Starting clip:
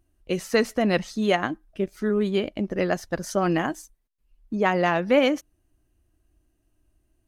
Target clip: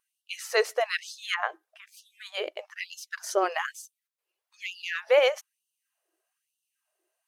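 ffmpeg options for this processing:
-filter_complex "[0:a]asettb=1/sr,asplit=3[a][b][c];[a]atrim=end=1.344[d];[b]atrim=start=1.34:end=1.92,asetpts=PTS-STARTPTS,afade=t=in:d=0.004:c=qsin,afade=t=out:st=0.576:d=0.004:c=qsin,acrossover=split=2800[e][f];[f]acompressor=threshold=-56dB:ratio=4:attack=1:release=60[g];[e][g]amix=inputs=2:normalize=0[h];[c]atrim=start=1.916[i];[d][h]acrossfade=d=0.004:c1=hsin:c2=qsin[j];[j][i]acrossfade=d=0.004:c1=qsin:c2=hsin,afftfilt=real='re*gte(b*sr/1024,330*pow(2700/330,0.5+0.5*sin(2*PI*1.1*pts/sr)))':imag='im*gte(b*sr/1024,330*pow(2700/330,0.5+0.5*sin(2*PI*1.1*pts/sr)))':win_size=1024:overlap=0.75"

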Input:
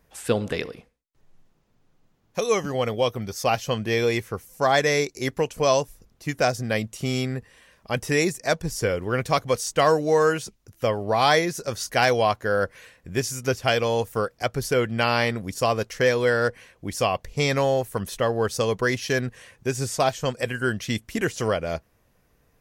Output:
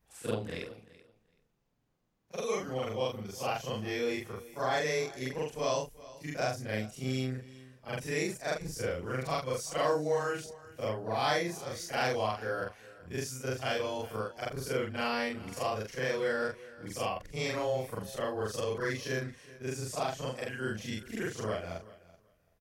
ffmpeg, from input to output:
-af "afftfilt=real='re':imag='-im':win_size=4096:overlap=0.75,aecho=1:1:381|762:0.112|0.0191,volume=-6dB"

